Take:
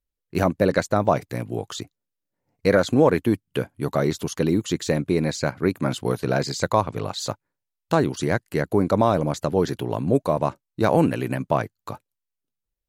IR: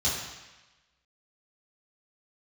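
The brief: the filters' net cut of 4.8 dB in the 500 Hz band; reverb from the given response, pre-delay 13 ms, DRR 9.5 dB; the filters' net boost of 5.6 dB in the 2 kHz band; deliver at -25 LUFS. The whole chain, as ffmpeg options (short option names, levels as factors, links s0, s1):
-filter_complex "[0:a]equalizer=f=500:t=o:g=-6.5,equalizer=f=2000:t=o:g=8,asplit=2[s0][s1];[1:a]atrim=start_sample=2205,adelay=13[s2];[s1][s2]afir=irnorm=-1:irlink=0,volume=0.106[s3];[s0][s3]amix=inputs=2:normalize=0,volume=0.891"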